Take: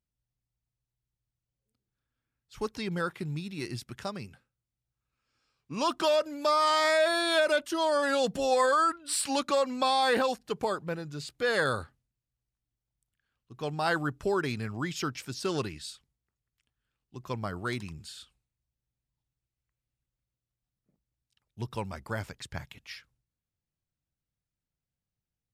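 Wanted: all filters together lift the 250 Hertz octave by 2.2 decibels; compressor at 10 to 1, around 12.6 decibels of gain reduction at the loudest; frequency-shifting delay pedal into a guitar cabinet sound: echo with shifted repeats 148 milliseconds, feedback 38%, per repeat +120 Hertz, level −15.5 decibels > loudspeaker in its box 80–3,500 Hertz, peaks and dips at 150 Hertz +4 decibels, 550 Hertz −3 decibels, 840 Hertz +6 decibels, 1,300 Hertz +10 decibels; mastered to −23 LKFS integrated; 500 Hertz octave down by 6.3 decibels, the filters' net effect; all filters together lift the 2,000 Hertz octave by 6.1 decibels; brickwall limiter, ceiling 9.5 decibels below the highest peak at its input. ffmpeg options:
ffmpeg -i in.wav -filter_complex "[0:a]equalizer=frequency=250:width_type=o:gain=5,equalizer=frequency=500:width_type=o:gain=-8.5,equalizer=frequency=2000:width_type=o:gain=5,acompressor=threshold=-34dB:ratio=10,alimiter=level_in=9dB:limit=-24dB:level=0:latency=1,volume=-9dB,asplit=4[link_01][link_02][link_03][link_04];[link_02]adelay=148,afreqshift=120,volume=-15.5dB[link_05];[link_03]adelay=296,afreqshift=240,volume=-23.9dB[link_06];[link_04]adelay=444,afreqshift=360,volume=-32.3dB[link_07];[link_01][link_05][link_06][link_07]amix=inputs=4:normalize=0,highpass=80,equalizer=frequency=150:width_type=q:width=4:gain=4,equalizer=frequency=550:width_type=q:width=4:gain=-3,equalizer=frequency=840:width_type=q:width=4:gain=6,equalizer=frequency=1300:width_type=q:width=4:gain=10,lowpass=frequency=3500:width=0.5412,lowpass=frequency=3500:width=1.3066,volume=16dB" out.wav

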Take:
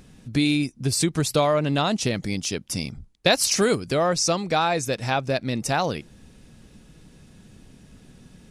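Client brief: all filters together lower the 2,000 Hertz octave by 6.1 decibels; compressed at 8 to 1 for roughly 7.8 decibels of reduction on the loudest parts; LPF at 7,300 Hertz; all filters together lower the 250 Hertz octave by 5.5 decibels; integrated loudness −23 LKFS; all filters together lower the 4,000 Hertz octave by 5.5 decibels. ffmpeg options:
ffmpeg -i in.wav -af "lowpass=7300,equalizer=frequency=250:width_type=o:gain=-7.5,equalizer=frequency=2000:width_type=o:gain=-7,equalizer=frequency=4000:width_type=o:gain=-4.5,acompressor=threshold=-25dB:ratio=8,volume=8dB" out.wav

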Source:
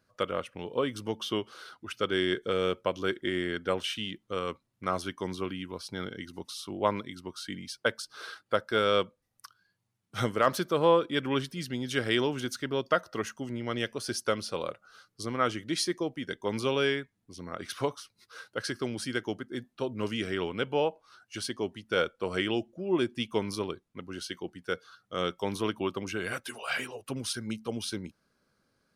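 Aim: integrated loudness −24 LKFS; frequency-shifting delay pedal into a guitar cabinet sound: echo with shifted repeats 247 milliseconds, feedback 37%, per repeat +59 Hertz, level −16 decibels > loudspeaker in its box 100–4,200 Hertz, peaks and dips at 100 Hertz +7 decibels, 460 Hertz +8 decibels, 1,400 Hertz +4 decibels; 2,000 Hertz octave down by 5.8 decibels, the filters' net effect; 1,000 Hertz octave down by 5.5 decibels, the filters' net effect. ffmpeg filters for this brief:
ffmpeg -i in.wav -filter_complex "[0:a]equalizer=frequency=1000:width_type=o:gain=-7,equalizer=frequency=2000:width_type=o:gain=-7.5,asplit=4[link_01][link_02][link_03][link_04];[link_02]adelay=247,afreqshift=59,volume=-16dB[link_05];[link_03]adelay=494,afreqshift=118,volume=-24.6dB[link_06];[link_04]adelay=741,afreqshift=177,volume=-33.3dB[link_07];[link_01][link_05][link_06][link_07]amix=inputs=4:normalize=0,highpass=100,equalizer=frequency=100:width_type=q:width=4:gain=7,equalizer=frequency=460:width_type=q:width=4:gain=8,equalizer=frequency=1400:width_type=q:width=4:gain=4,lowpass=frequency=4200:width=0.5412,lowpass=frequency=4200:width=1.3066,volume=6.5dB" out.wav

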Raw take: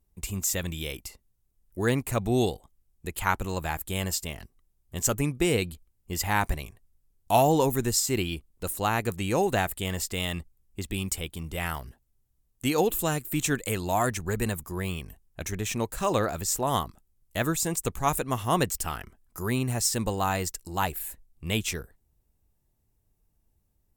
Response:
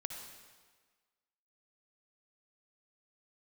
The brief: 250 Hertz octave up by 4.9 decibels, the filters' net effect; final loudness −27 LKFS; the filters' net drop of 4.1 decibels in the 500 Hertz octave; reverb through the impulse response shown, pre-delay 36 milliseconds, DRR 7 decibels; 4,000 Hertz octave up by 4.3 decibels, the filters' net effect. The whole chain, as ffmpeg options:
-filter_complex "[0:a]equalizer=frequency=250:width_type=o:gain=9,equalizer=frequency=500:width_type=o:gain=-9,equalizer=frequency=4000:width_type=o:gain=6,asplit=2[link_01][link_02];[1:a]atrim=start_sample=2205,adelay=36[link_03];[link_02][link_03]afir=irnorm=-1:irlink=0,volume=-6dB[link_04];[link_01][link_04]amix=inputs=2:normalize=0,volume=-0.5dB"

